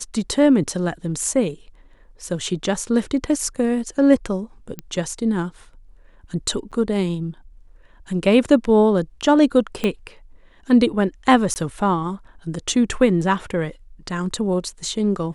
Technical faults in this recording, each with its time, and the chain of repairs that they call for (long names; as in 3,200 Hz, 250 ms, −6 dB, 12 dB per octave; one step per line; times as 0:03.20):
0:04.79: click −15 dBFS
0:06.71–0:06.72: drop-out 7.2 ms
0:09.84: click −9 dBFS
0:11.54–0:11.56: drop-out 19 ms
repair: click removal
repair the gap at 0:06.71, 7.2 ms
repair the gap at 0:11.54, 19 ms